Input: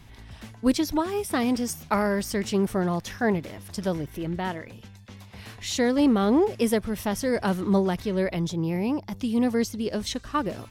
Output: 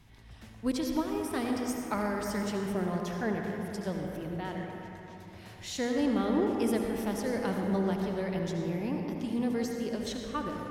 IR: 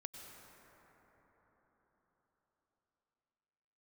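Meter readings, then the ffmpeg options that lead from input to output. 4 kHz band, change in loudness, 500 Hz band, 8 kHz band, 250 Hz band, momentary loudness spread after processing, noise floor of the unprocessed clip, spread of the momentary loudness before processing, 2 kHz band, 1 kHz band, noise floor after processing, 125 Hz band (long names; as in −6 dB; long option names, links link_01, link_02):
−7.5 dB, −6.5 dB, −6.0 dB, −8.0 dB, −6.0 dB, 11 LU, −48 dBFS, 10 LU, −6.5 dB, −6.5 dB, −50 dBFS, −6.0 dB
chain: -filter_complex "[1:a]atrim=start_sample=2205,asetrate=61740,aresample=44100[link_01];[0:a][link_01]afir=irnorm=-1:irlink=0"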